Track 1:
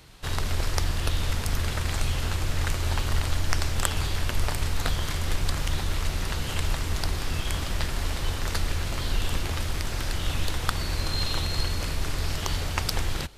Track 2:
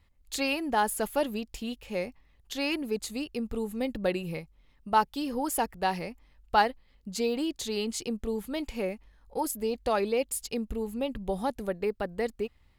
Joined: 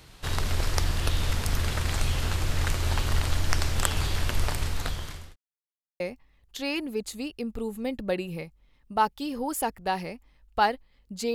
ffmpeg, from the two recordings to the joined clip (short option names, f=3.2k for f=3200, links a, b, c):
-filter_complex "[0:a]apad=whole_dur=11.34,atrim=end=11.34,asplit=2[a][b];[a]atrim=end=5.36,asetpts=PTS-STARTPTS,afade=t=out:st=4.17:d=1.19:c=qsin[c];[b]atrim=start=5.36:end=6,asetpts=PTS-STARTPTS,volume=0[d];[1:a]atrim=start=1.96:end=7.3,asetpts=PTS-STARTPTS,afade=t=in:d=0.004:c=hsin[e];[c][d][e]concat=n=3:v=0:a=1"